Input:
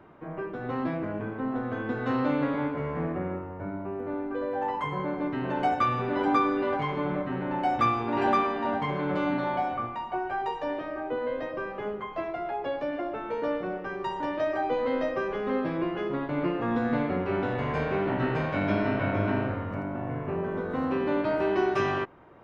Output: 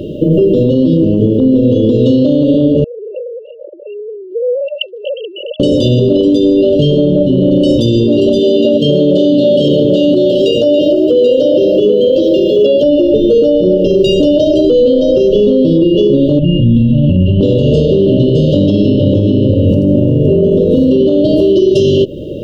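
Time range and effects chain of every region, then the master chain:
2.84–5.6 sine-wave speech + HPF 830 Hz 24 dB/oct + air absorption 140 m
8.39–12.83 HPF 270 Hz 6 dB/oct + echo 0.783 s -4.5 dB
16.39–17.41 EQ curve 140 Hz 0 dB, 240 Hz -11 dB, 480 Hz -28 dB, 930 Hz +11 dB, 2200 Hz +6 dB, 3700 Hz -20 dB, 5700 Hz -29 dB, 9000 Hz -23 dB + fast leveller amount 70%
whole clip: FFT band-reject 620–2700 Hz; compressor 10:1, threshold -35 dBFS; maximiser +34 dB; gain -1 dB

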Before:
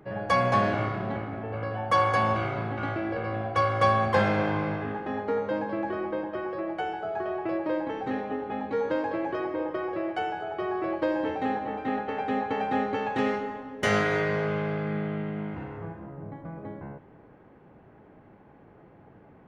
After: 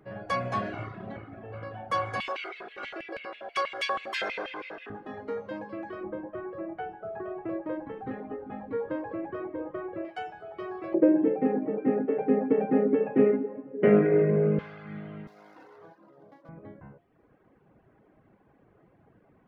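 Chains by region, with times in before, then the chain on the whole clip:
2.2–4.9 tilt shelf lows -7 dB, about 1100 Hz + LFO high-pass square 6.2 Hz 410–2500 Hz
6.03–10.05 LPF 2000 Hz + low shelf 380 Hz +6 dB
10.94–14.59 Chebyshev band-pass 150–2500 Hz, order 4 + resonant low shelf 660 Hz +13.5 dB, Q 1.5
15.27–16.49 median filter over 15 samples + HPF 380 Hz + bell 6700 Hz -3 dB 0.67 oct
whole clip: de-hum 86.99 Hz, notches 8; reverb removal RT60 0.96 s; notch 860 Hz, Q 12; gain -5 dB

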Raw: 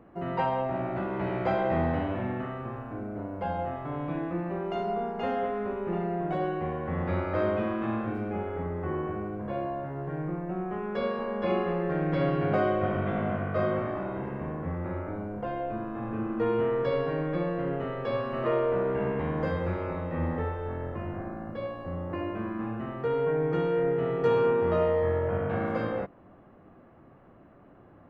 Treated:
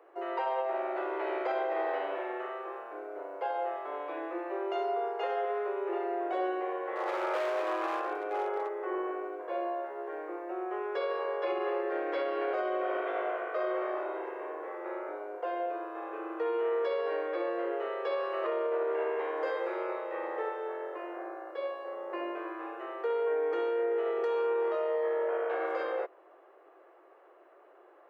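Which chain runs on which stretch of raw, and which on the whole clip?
6.95–8.69 dynamic EQ 910 Hz, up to +7 dB, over -42 dBFS, Q 1 + overloaded stage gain 25 dB
whole clip: steep high-pass 350 Hz 72 dB/oct; limiter -23.5 dBFS

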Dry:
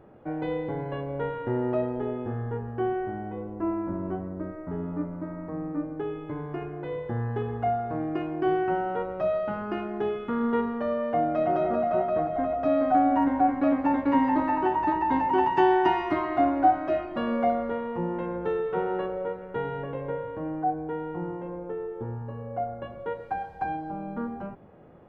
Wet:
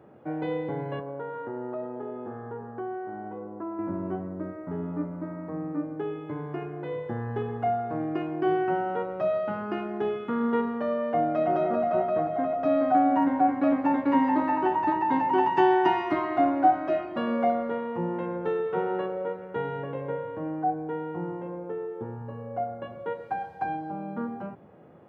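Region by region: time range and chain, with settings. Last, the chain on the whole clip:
0.99–3.79 HPF 260 Hz 6 dB/oct + resonant high shelf 1800 Hz -7.5 dB, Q 1.5 + compressor 2.5:1, threshold -33 dBFS
whole clip: HPF 93 Hz 24 dB/oct; notches 60/120 Hz

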